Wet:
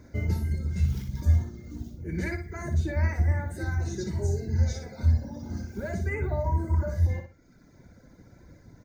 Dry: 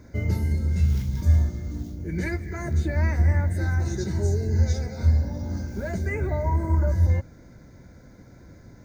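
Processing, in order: reverb removal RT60 1.1 s; on a send: feedback echo 60 ms, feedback 26%, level -7 dB; on the sum: gain -2.5 dB

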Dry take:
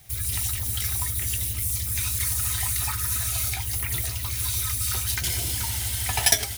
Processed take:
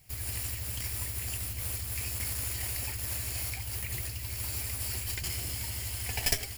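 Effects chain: minimum comb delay 0.41 ms; gain -7 dB

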